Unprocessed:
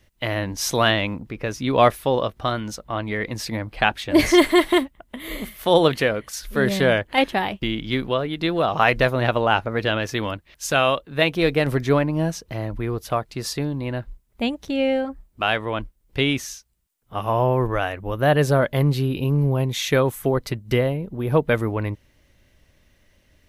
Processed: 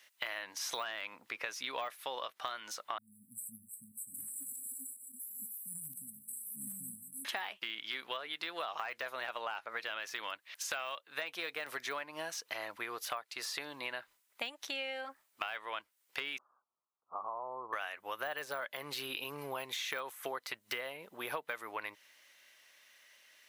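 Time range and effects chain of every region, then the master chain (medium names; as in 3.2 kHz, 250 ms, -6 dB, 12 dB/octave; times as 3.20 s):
2.98–7.25 s: backward echo that repeats 153 ms, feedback 54%, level -12.5 dB + brick-wall FIR band-stop 260–7600 Hz + treble shelf 6 kHz +4.5 dB
16.38–17.73 s: compression 4:1, threshold -30 dBFS + steep low-pass 1.3 kHz 96 dB/octave
whole clip: de-esser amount 80%; high-pass 1.2 kHz 12 dB/octave; compression 12:1, threshold -39 dBFS; trim +3.5 dB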